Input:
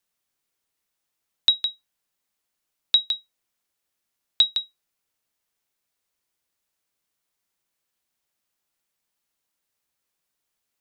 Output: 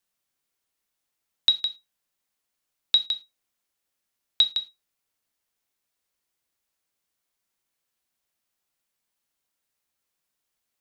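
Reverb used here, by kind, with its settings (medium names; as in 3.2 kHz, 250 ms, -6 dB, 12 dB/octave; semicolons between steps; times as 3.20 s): gated-style reverb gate 130 ms falling, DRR 10 dB; trim -1.5 dB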